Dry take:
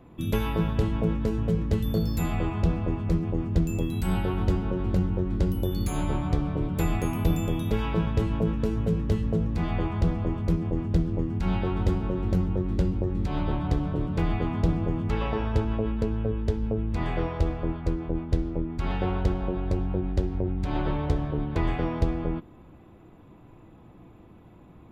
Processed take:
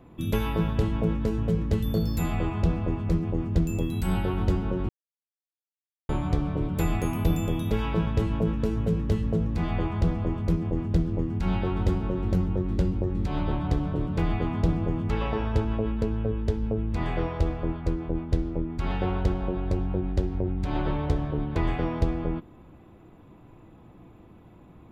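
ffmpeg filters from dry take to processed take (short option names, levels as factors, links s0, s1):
-filter_complex "[0:a]asplit=3[s0][s1][s2];[s0]atrim=end=4.89,asetpts=PTS-STARTPTS,afade=t=out:st=4.886:d=0.004:c=hsin[s3];[s1]atrim=start=4.89:end=6.09,asetpts=PTS-STARTPTS,volume=0[s4];[s2]atrim=start=6.09,asetpts=PTS-STARTPTS,afade=t=in:d=0.004:c=hsin[s5];[s3][s4][s5]concat=n=3:v=0:a=1"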